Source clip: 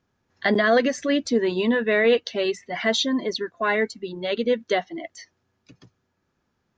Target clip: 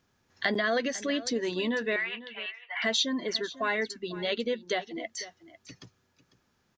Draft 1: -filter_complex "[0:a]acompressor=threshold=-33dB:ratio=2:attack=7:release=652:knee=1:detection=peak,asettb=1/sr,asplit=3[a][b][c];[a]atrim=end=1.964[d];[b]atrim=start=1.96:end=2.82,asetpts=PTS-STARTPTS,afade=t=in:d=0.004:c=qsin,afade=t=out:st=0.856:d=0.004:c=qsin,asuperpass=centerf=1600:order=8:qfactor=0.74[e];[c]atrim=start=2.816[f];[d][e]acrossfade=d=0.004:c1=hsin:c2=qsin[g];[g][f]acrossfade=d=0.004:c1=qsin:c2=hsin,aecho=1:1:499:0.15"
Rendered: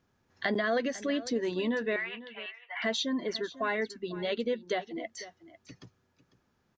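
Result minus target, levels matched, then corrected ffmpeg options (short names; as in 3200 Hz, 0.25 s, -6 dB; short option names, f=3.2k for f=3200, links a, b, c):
4000 Hz band -3.5 dB
-filter_complex "[0:a]acompressor=threshold=-33dB:ratio=2:attack=7:release=652:knee=1:detection=peak,highshelf=f=2k:g=7.5,asettb=1/sr,asplit=3[a][b][c];[a]atrim=end=1.964[d];[b]atrim=start=1.96:end=2.82,asetpts=PTS-STARTPTS,afade=t=in:d=0.004:c=qsin,afade=t=out:st=0.856:d=0.004:c=qsin,asuperpass=centerf=1600:order=8:qfactor=0.74[e];[c]atrim=start=2.816[f];[d][e]acrossfade=d=0.004:c1=hsin:c2=qsin[g];[g][f]acrossfade=d=0.004:c1=qsin:c2=hsin,aecho=1:1:499:0.15"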